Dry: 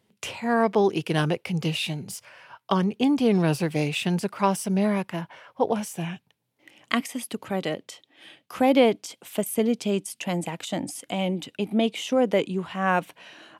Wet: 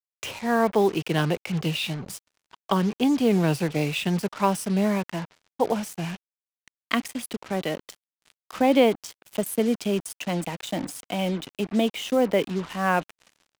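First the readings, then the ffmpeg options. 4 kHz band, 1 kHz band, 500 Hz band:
0.0 dB, 0.0 dB, 0.0 dB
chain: -filter_complex "[0:a]acrossover=split=120|7000[link_01][link_02][link_03];[link_03]aeval=exprs='sgn(val(0))*max(abs(val(0))-0.00335,0)':channel_layout=same[link_04];[link_01][link_02][link_04]amix=inputs=3:normalize=0,acrusher=bits=5:mix=0:aa=0.5"

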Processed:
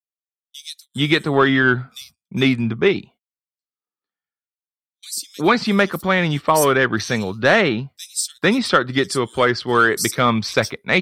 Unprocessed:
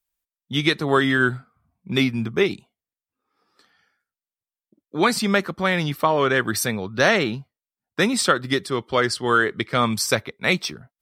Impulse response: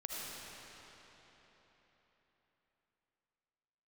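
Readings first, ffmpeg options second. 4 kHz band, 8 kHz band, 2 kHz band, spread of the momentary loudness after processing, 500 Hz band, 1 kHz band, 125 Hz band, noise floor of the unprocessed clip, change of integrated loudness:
+2.0 dB, +3.0 dB, +3.5 dB, 12 LU, +3.5 dB, +3.5 dB, +3.5 dB, below −85 dBFS, +3.0 dB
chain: -filter_complex "[0:a]acrossover=split=4900[link_01][link_02];[link_01]adelay=450[link_03];[link_03][link_02]amix=inputs=2:normalize=0,aeval=exprs='0.668*(cos(1*acos(clip(val(0)/0.668,-1,1)))-cos(1*PI/2))+0.0299*(cos(5*acos(clip(val(0)/0.668,-1,1)))-cos(5*PI/2))':channel_layout=same,agate=range=-35dB:threshold=-47dB:ratio=16:detection=peak,volume=2.5dB"

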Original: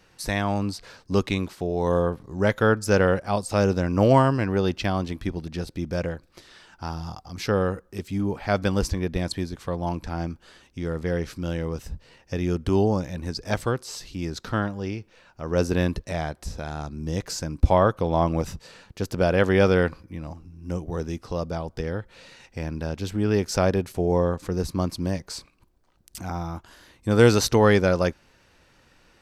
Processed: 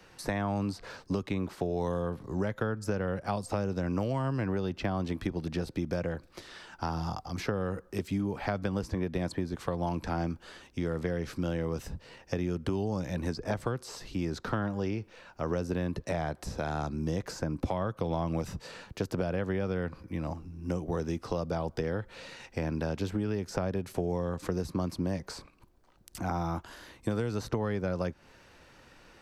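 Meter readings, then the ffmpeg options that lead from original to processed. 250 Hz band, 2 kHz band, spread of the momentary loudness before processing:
−6.5 dB, −10.0 dB, 16 LU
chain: -filter_complex "[0:a]acrossover=split=90|200|1900[link_01][link_02][link_03][link_04];[link_01]acompressor=threshold=-43dB:ratio=4[link_05];[link_02]acompressor=threshold=-26dB:ratio=4[link_06];[link_03]acompressor=threshold=-29dB:ratio=4[link_07];[link_04]acompressor=threshold=-45dB:ratio=4[link_08];[link_05][link_06][link_07][link_08]amix=inputs=4:normalize=0,equalizer=frequency=680:width=0.31:gain=3.5,acompressor=threshold=-27dB:ratio=6"

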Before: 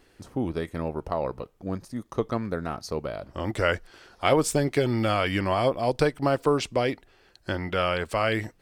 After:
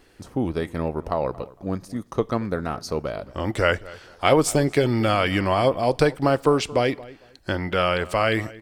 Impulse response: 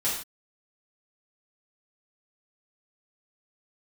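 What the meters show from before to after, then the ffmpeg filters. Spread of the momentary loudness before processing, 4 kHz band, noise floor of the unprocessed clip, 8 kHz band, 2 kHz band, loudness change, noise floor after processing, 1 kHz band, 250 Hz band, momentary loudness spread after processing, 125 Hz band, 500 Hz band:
10 LU, +3.5 dB, −62 dBFS, +3.5 dB, +3.5 dB, +4.0 dB, −54 dBFS, +4.0 dB, +4.0 dB, 11 LU, +3.5 dB, +4.0 dB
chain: -filter_complex "[0:a]asplit=2[link_01][link_02];[link_02]adelay=227,lowpass=frequency=2500:poles=1,volume=-19.5dB,asplit=2[link_03][link_04];[link_04]adelay=227,lowpass=frequency=2500:poles=1,volume=0.23[link_05];[link_01][link_03][link_05]amix=inputs=3:normalize=0,asplit=2[link_06][link_07];[1:a]atrim=start_sample=2205[link_08];[link_07][link_08]afir=irnorm=-1:irlink=0,volume=-32dB[link_09];[link_06][link_09]amix=inputs=2:normalize=0,volume=3.5dB"

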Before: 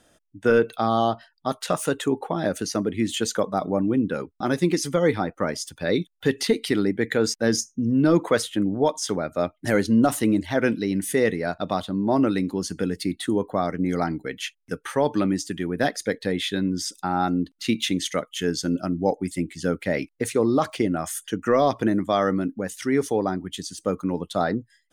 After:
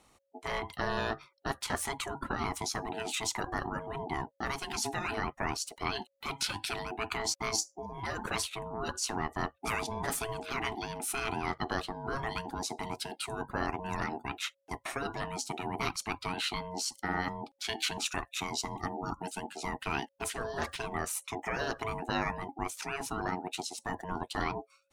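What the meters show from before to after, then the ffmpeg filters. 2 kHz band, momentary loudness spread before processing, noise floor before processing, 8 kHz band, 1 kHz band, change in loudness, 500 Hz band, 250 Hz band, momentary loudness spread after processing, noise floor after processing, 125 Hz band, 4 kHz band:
−5.0 dB, 7 LU, −67 dBFS, −4.5 dB, −6.5 dB, −11.0 dB, −15.5 dB, −18.0 dB, 5 LU, −72 dBFS, −12.0 dB, −5.0 dB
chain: -af "afftfilt=real='re*lt(hypot(re,im),0.316)':imag='im*lt(hypot(re,im),0.316)':win_size=1024:overlap=0.75,aeval=exprs='val(0)*sin(2*PI*550*n/s)':channel_layout=same,volume=-1.5dB"

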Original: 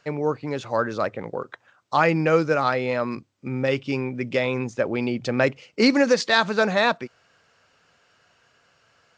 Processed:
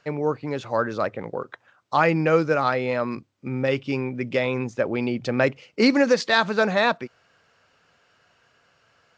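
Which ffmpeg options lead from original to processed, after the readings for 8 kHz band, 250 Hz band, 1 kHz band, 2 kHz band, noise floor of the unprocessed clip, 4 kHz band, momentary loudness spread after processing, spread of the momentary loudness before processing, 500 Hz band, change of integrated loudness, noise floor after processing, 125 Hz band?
−3.0 dB, 0.0 dB, 0.0 dB, −0.5 dB, −63 dBFS, −1.5 dB, 13 LU, 13 LU, 0.0 dB, 0.0 dB, −64 dBFS, 0.0 dB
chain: -af "highshelf=frequency=7200:gain=-7.5"

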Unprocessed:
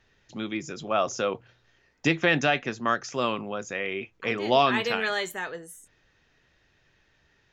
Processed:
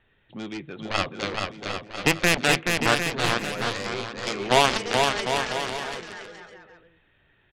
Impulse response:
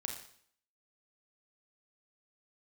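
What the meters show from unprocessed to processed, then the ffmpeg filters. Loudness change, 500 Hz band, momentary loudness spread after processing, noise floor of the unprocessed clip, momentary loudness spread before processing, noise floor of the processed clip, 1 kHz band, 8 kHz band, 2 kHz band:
+2.5 dB, +0.5 dB, 16 LU, −67 dBFS, 14 LU, −64 dBFS, +2.5 dB, +9.0 dB, +3.5 dB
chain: -af "aresample=8000,aresample=44100,aeval=exprs='0.398*(cos(1*acos(clip(val(0)/0.398,-1,1)))-cos(1*PI/2))+0.1*(cos(7*acos(clip(val(0)/0.398,-1,1)))-cos(7*PI/2))':channel_layout=same,aecho=1:1:430|752.5|994.4|1176|1312:0.631|0.398|0.251|0.158|0.1,volume=2.5dB"

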